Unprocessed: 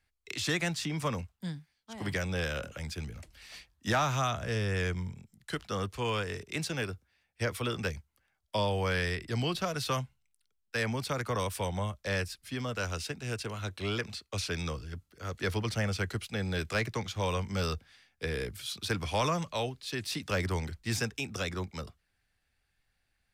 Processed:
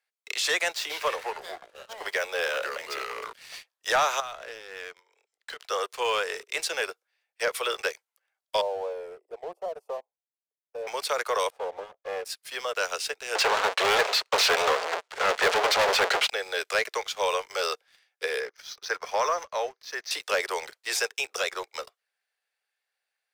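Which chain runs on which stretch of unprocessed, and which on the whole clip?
0.75–3.33 median filter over 5 samples + echoes that change speed 0.135 s, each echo -4 st, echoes 3, each echo -6 dB
4.2–5.6 compressor, threshold -39 dBFS + BPF 310–5700 Hz
8.61–10.87 inverse Chebyshev low-pass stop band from 1500 Hz + tilt +4.5 dB/oct
11.5–12.25 minimum comb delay 2.4 ms + band-pass 580 Hz, Q 1.6
13.35–16.3 half-waves squared off + LPF 8900 Hz 24 dB/oct + overdrive pedal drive 22 dB, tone 3100 Hz, clips at -16 dBFS
18.4–20.11 rippled Chebyshev low-pass 6300 Hz, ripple 3 dB + band shelf 3300 Hz -9 dB 1.1 oct
whole clip: steep high-pass 430 Hz 48 dB/oct; sample leveller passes 2

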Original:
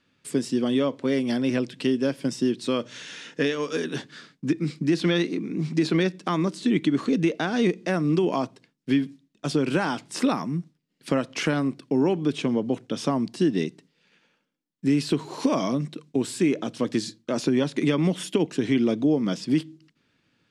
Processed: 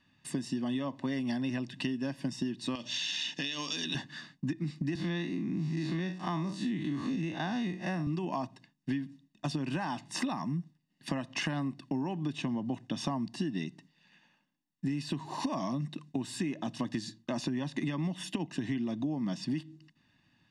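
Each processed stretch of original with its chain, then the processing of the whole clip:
2.75–3.95 resonant high shelf 2300 Hz +11 dB, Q 1.5 + compressor, threshold -26 dBFS + BPF 140–7500 Hz
4.95–8.07 time blur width 94 ms + three-band squash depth 40%
whole clip: high shelf 8200 Hz -9.5 dB; comb 1.1 ms, depth 82%; compressor, threshold -28 dBFS; gain -2.5 dB

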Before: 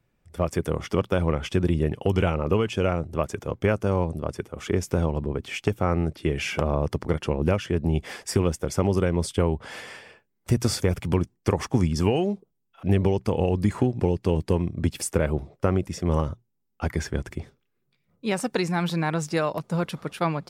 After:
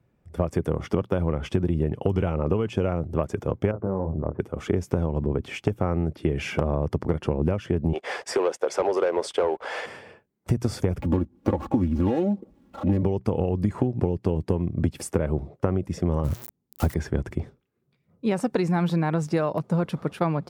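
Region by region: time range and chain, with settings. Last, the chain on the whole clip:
3.71–4.4 LPF 1300 Hz 24 dB/oct + compressor 2:1, threshold -31 dBFS + doubler 26 ms -6 dB
7.93–9.86 HPF 460 Hz 24 dB/oct + sample leveller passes 2 + air absorption 53 m
10.99–13.03 median filter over 25 samples + comb 3.6 ms, depth 82% + upward compressor, threshold -26 dBFS
16.24–16.94 switching spikes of -19.5 dBFS + low shelf 390 Hz +6.5 dB
whole clip: HPF 51 Hz; tilt shelf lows +6 dB, about 1500 Hz; compressor, threshold -19 dBFS

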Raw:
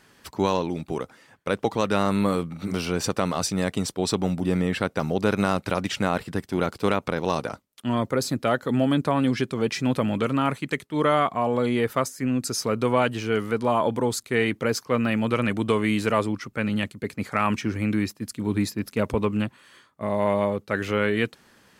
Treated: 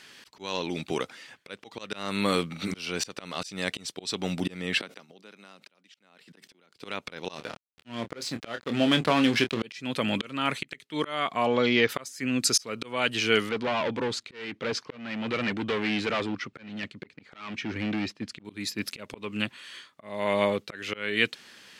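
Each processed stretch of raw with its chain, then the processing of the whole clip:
4.8–6.74 HPF 160 Hz 24 dB/oct + flipped gate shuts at -21 dBFS, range -29 dB + sustainer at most 140 dB/s
7.35–9.63 backlash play -30 dBFS + doubler 26 ms -9 dB
11.46–11.89 bell 6600 Hz -10.5 dB 0.75 oct + careless resampling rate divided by 3×, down none, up filtered
13.49–18.45 hard clip -23.5 dBFS + tape spacing loss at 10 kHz 21 dB
whole clip: weighting filter D; auto swell 0.431 s

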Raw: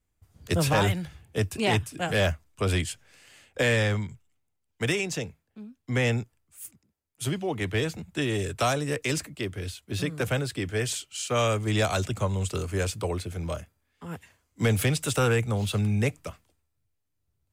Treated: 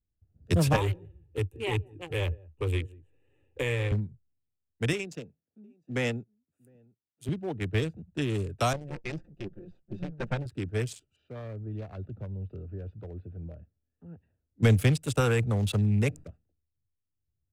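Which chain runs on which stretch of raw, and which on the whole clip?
0.76–3.92 fixed phaser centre 990 Hz, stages 8 + echo 0.177 s -16 dB + three-band squash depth 40%
4.93–7.29 HPF 180 Hz + echo 0.707 s -21.5 dB
8.73–10.46 minimum comb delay 5.7 ms + air absorption 91 m
11.16–14.63 LPF 3500 Hz 24 dB/oct + dynamic EQ 2500 Hz, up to -5 dB, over -49 dBFS, Q 4 + compressor 2:1, threshold -35 dBFS
15.2–16.24 low shelf 320 Hz -4 dB + fast leveller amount 50%
whole clip: Wiener smoothing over 41 samples; low shelf 260 Hz +5 dB; upward expander 1.5:1, over -38 dBFS

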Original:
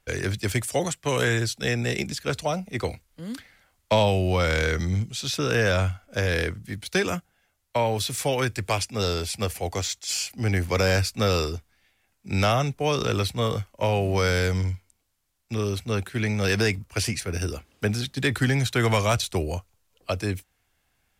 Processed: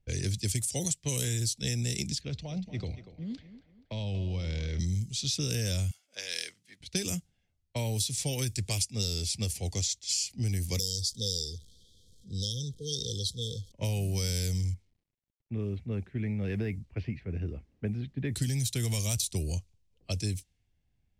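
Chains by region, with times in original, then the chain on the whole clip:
2.21–4.79 compressor 10:1, threshold -25 dBFS + air absorption 140 m + thinning echo 0.238 s, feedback 49%, high-pass 220 Hz, level -11 dB
5.91–6.81 HPF 910 Hz + high shelf 10000 Hz +6 dB
10.79–13.72 zero-crossing step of -38.5 dBFS + brick-wall FIR band-stop 530–3100 Hz + resonant low shelf 440 Hz -10 dB, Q 1.5
14.74–18.36 LPF 2000 Hz 24 dB/oct + bell 100 Hz -6 dB 1.2 oct + requantised 12-bit, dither none
whole clip: low-pass opened by the level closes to 1500 Hz, open at -20 dBFS; EQ curve 150 Hz 0 dB, 1400 Hz -23 dB, 2000 Hz -12 dB, 5400 Hz +5 dB, 9100 Hz +10 dB; compressor, threshold -28 dBFS; gain +1 dB

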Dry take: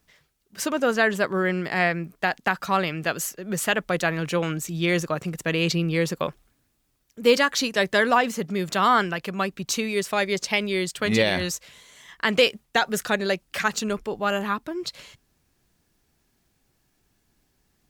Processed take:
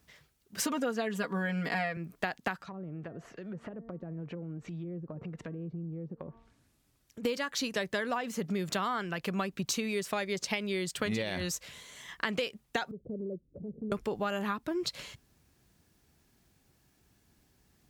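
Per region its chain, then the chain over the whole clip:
0.63–1.97 HPF 49 Hz + comb 4.2 ms, depth 96%
2.56–7.25 treble ducked by the level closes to 360 Hz, closed at -21 dBFS + de-hum 228.2 Hz, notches 9 + compressor 4:1, threshold -42 dBFS
12.91–13.92 steep low-pass 510 Hz 48 dB/oct + compressor 2:1, threshold -45 dBFS
whole clip: HPF 50 Hz; low shelf 190 Hz +4.5 dB; compressor 12:1, threshold -29 dBFS

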